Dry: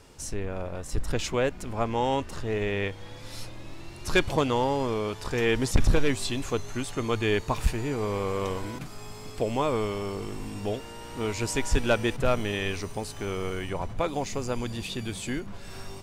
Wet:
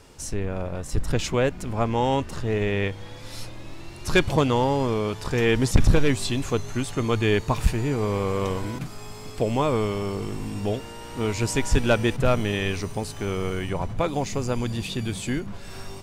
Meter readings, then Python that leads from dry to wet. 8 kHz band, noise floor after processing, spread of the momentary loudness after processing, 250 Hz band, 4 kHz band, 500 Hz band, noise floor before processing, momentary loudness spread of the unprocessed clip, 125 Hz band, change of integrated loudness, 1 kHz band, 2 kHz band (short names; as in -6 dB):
+2.5 dB, -39 dBFS, 14 LU, +5.0 dB, +2.5 dB, +3.0 dB, -42 dBFS, 14 LU, +6.5 dB, +4.0 dB, +2.5 dB, +2.5 dB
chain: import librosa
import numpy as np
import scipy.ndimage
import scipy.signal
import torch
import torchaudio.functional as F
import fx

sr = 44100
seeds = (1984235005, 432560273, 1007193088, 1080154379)

y = fx.dynamic_eq(x, sr, hz=140.0, q=0.87, threshold_db=-43.0, ratio=4.0, max_db=5)
y = F.gain(torch.from_numpy(y), 2.5).numpy()